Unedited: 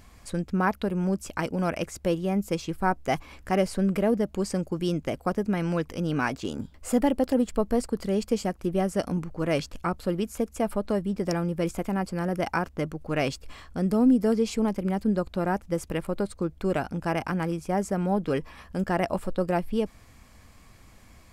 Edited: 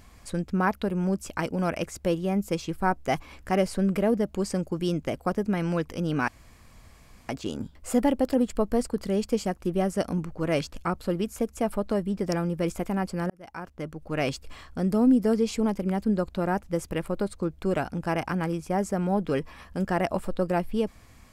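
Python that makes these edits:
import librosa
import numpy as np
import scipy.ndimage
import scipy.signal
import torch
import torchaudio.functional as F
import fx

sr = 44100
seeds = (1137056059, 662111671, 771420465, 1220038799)

y = fx.edit(x, sr, fx.insert_room_tone(at_s=6.28, length_s=1.01),
    fx.fade_in_span(start_s=12.29, length_s=1.02), tone=tone)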